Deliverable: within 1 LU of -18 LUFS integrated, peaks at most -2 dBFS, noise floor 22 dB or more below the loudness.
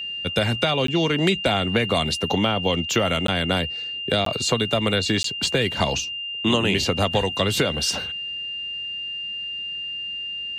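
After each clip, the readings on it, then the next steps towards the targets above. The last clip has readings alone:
dropouts 4; longest dropout 13 ms; steady tone 2.8 kHz; tone level -28 dBFS; loudness -22.5 LUFS; peak level -8.0 dBFS; loudness target -18.0 LUFS
-> interpolate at 0.87/3.27/4.25/5.23 s, 13 ms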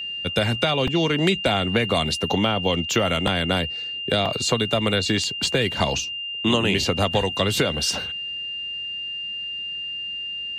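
dropouts 0; steady tone 2.8 kHz; tone level -28 dBFS
-> band-stop 2.8 kHz, Q 30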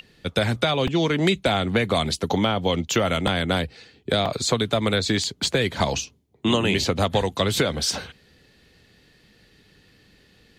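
steady tone not found; loudness -23.0 LUFS; peak level -8.5 dBFS; loudness target -18.0 LUFS
-> trim +5 dB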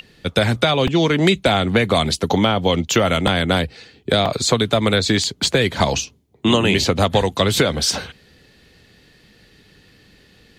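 loudness -18.0 LUFS; peak level -3.5 dBFS; noise floor -53 dBFS

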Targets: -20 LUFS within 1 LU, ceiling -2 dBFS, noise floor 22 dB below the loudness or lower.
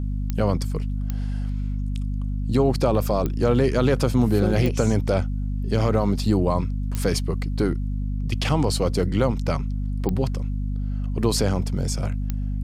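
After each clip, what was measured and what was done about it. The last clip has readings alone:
clicks found 7; hum 50 Hz; highest harmonic 250 Hz; hum level -23 dBFS; loudness -24.0 LUFS; peak level -7.5 dBFS; loudness target -20.0 LUFS
-> de-click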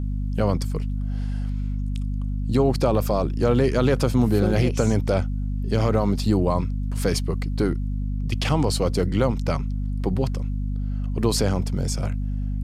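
clicks found 0; hum 50 Hz; highest harmonic 250 Hz; hum level -23 dBFS
-> hum notches 50/100/150/200/250 Hz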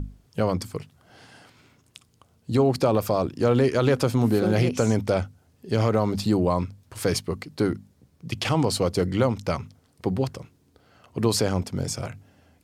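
hum not found; loudness -24.5 LUFS; peak level -9.0 dBFS; loudness target -20.0 LUFS
-> trim +4.5 dB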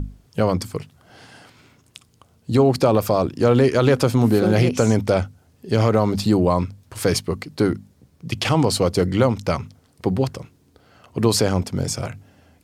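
loudness -20.0 LUFS; peak level -4.5 dBFS; noise floor -58 dBFS

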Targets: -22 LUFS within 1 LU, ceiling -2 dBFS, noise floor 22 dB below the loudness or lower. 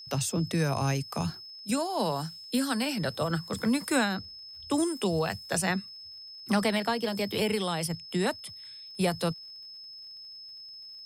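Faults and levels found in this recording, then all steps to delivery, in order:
tick rate 43 per s; steady tone 5.2 kHz; tone level -43 dBFS; loudness -29.5 LUFS; peak level -14.0 dBFS; loudness target -22.0 LUFS
-> de-click; band-stop 5.2 kHz, Q 30; trim +7.5 dB

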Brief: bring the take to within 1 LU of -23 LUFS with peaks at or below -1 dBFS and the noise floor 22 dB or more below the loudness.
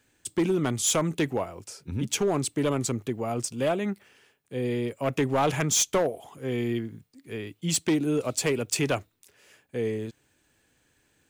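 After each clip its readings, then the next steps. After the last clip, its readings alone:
clipped samples 0.9%; clipping level -18.5 dBFS; loudness -27.5 LUFS; peak level -18.5 dBFS; loudness target -23.0 LUFS
-> clip repair -18.5 dBFS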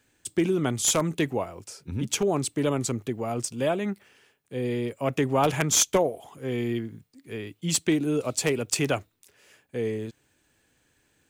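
clipped samples 0.0%; loudness -26.5 LUFS; peak level -9.5 dBFS; loudness target -23.0 LUFS
-> trim +3.5 dB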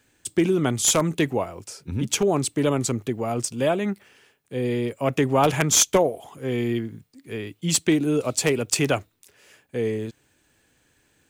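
loudness -23.0 LUFS; peak level -6.0 dBFS; noise floor -66 dBFS

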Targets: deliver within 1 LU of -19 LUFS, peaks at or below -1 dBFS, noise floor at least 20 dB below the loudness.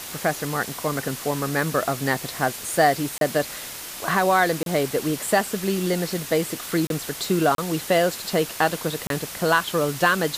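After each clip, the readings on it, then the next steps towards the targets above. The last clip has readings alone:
dropouts 5; longest dropout 32 ms; noise floor -36 dBFS; noise floor target -44 dBFS; loudness -23.5 LUFS; peak level -6.5 dBFS; loudness target -19.0 LUFS
-> interpolate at 3.18/4.63/6.87/7.55/9.07 s, 32 ms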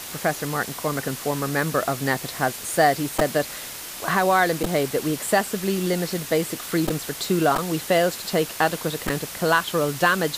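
dropouts 0; noise floor -36 dBFS; noise floor target -44 dBFS
-> noise print and reduce 8 dB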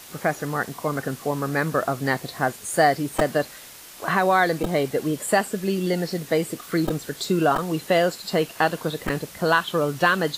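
noise floor -43 dBFS; noise floor target -44 dBFS
-> noise print and reduce 6 dB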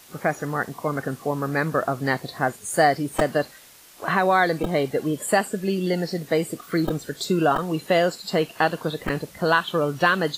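noise floor -48 dBFS; loudness -23.5 LUFS; peak level -7.0 dBFS; loudness target -19.0 LUFS
-> trim +4.5 dB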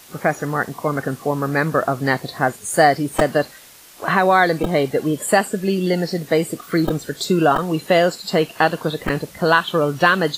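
loudness -19.0 LUFS; peak level -2.5 dBFS; noise floor -43 dBFS

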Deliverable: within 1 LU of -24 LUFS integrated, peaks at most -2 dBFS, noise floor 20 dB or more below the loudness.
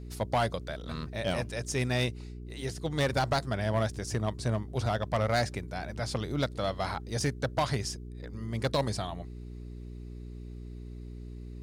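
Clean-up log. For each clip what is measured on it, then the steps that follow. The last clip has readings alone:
clipped samples 1.0%; clipping level -21.5 dBFS; hum 60 Hz; highest harmonic 420 Hz; hum level -39 dBFS; loudness -32.0 LUFS; peak level -21.5 dBFS; loudness target -24.0 LUFS
-> clip repair -21.5 dBFS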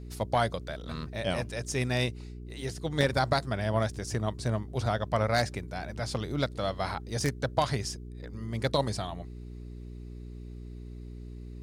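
clipped samples 0.0%; hum 60 Hz; highest harmonic 420 Hz; hum level -39 dBFS
-> de-hum 60 Hz, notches 7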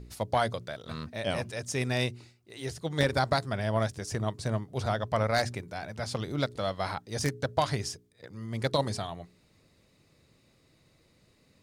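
hum not found; loudness -31.5 LUFS; peak level -12.5 dBFS; loudness target -24.0 LUFS
-> trim +7.5 dB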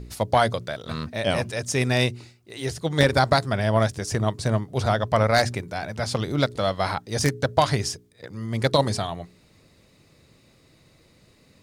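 loudness -24.0 LUFS; peak level -5.0 dBFS; noise floor -58 dBFS

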